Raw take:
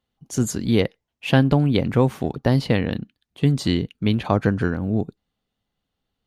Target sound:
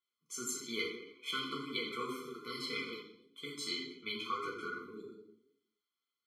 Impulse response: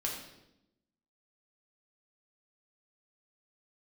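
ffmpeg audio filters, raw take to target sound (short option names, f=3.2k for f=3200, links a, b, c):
-filter_complex "[0:a]highpass=900,asettb=1/sr,asplit=3[a][b][c];[a]atrim=end=0.814[d];[b]atrim=start=0.81:end=2.98,asetpts=PTS-STARTPTS,afade=t=in:d=0.004:c=qsin,afade=t=out:st=2.166:d=0.004:c=qsin,asplit=8[e][f][g][h][i][j][k][l];[f]adelay=85,afreqshift=81,volume=-13dB[m];[g]adelay=170,afreqshift=162,volume=-17.4dB[n];[h]adelay=255,afreqshift=243,volume=-21.9dB[o];[i]adelay=340,afreqshift=324,volume=-26.3dB[p];[j]adelay=425,afreqshift=405,volume=-30.7dB[q];[k]adelay=510,afreqshift=486,volume=-35.2dB[r];[l]adelay=595,afreqshift=567,volume=-39.6dB[s];[e][m][n][o][p][q][r][s]amix=inputs=8:normalize=0,atrim=end_sample=95697[t];[c]atrim=start=2.976[u];[d][t]acrossfade=d=0.004:c1=hsin:c2=qsin[v];[v][u]acrossfade=d=0.004:c1=qsin:c2=hsin[w];[1:a]atrim=start_sample=2205,asetrate=57330,aresample=44100[x];[w][x]afir=irnorm=-1:irlink=0,flanger=delay=7.2:depth=2.5:regen=50:speed=1.8:shape=sinusoidal,afftfilt=real='re*eq(mod(floor(b*sr/1024/500),2),0)':imag='im*eq(mod(floor(b*sr/1024/500),2),0)':win_size=1024:overlap=0.75,volume=-1dB"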